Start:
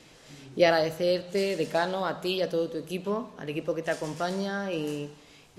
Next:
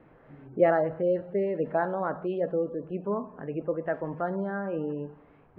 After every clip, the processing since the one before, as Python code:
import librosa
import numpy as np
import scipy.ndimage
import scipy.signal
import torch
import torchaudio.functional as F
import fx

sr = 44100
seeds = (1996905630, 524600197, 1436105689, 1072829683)

y = fx.spec_gate(x, sr, threshold_db=-30, keep='strong')
y = scipy.signal.sosfilt(scipy.signal.butter(4, 1600.0, 'lowpass', fs=sr, output='sos'), y)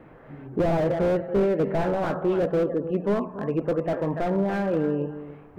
y = fx.echo_feedback(x, sr, ms=285, feedback_pct=17, wet_db=-13.5)
y = fx.slew_limit(y, sr, full_power_hz=20.0)
y = y * librosa.db_to_amplitude(7.5)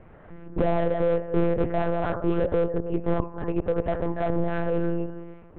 y = fx.lpc_monotone(x, sr, seeds[0], pitch_hz=170.0, order=8)